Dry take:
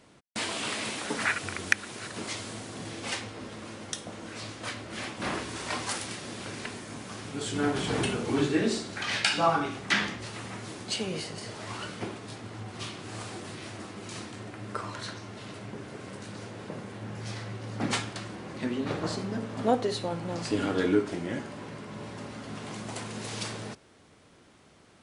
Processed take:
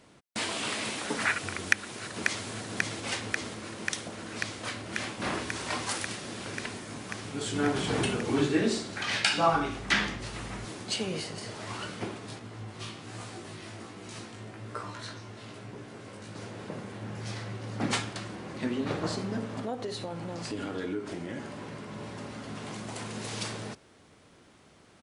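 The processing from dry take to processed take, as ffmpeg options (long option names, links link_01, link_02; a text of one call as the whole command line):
ffmpeg -i in.wav -filter_complex "[0:a]asplit=2[link_01][link_02];[link_02]afade=type=in:start_time=1.68:duration=0.01,afade=type=out:start_time=2.46:duration=0.01,aecho=0:1:540|1080|1620|2160|2700|3240|3780|4320|4860|5400|5940|6480:0.595662|0.506313|0.430366|0.365811|0.310939|0.264298|0.224654|0.190956|0.162312|0.137965|0.117271|0.09968[link_03];[link_01][link_03]amix=inputs=2:normalize=0,asettb=1/sr,asplit=3[link_04][link_05][link_06];[link_04]atrim=end=9.534[link_07];[link_05]atrim=start=9.53:end=10.65,asetpts=PTS-STARTPTS,afade=type=in:duration=0.004:curve=qsin,afade=type=out:start_time=1.116:duration=0.004:curve=qsin,aeval=exprs='val(0)+0.00708*(sin(2*PI*50*n/s)+sin(2*PI*2*50*n/s)/2+sin(2*PI*3*50*n/s)/3+sin(2*PI*4*50*n/s)/4+sin(2*PI*5*50*n/s)/5)':channel_layout=same[link_08];[link_06]atrim=start=10.646[link_09];[link_07][link_08]acrossfade=duration=0.004:curve1=hsin:curve2=qsin[link_10];[link_10][link_09]acrossfade=duration=0.004:curve1=qsin:curve2=hsin,asettb=1/sr,asplit=3[link_11][link_12][link_13];[link_11]atrim=end=12.394[link_14];[link_12]atrim=start=12.39:end=16.36,asetpts=PTS-STARTPTS,afade=type=in:duration=0.004:curve=qsin,afade=type=out:start_time=3.966:duration=0.004:curve=qsin,flanger=delay=16.5:depth=2.1:speed=1.2[link_15];[link_13]atrim=start=16.356[link_16];[link_14][link_15]acrossfade=duration=0.004:curve1=hsin:curve2=qsin[link_17];[link_17][link_16]acrossfade=duration=0.004:curve1=qsin:curve2=hsin,asettb=1/sr,asplit=3[link_18][link_19][link_20];[link_18]atrim=end=19.594[link_21];[link_19]atrim=start=19.59:end=23,asetpts=PTS-STARTPTS,afade=type=in:duration=0.004:curve=qsin,afade=type=out:start_time=3.406:duration=0.004:curve=qsin,acompressor=threshold=-34dB:ratio=2.5:attack=3.2:release=140:knee=1:detection=peak[link_22];[link_20]atrim=start=22.996[link_23];[link_21][link_22]acrossfade=duration=0.004:curve1=hsin:curve2=qsin[link_24];[link_24][link_23]acrossfade=duration=0.004:curve1=qsin:curve2=hsin" out.wav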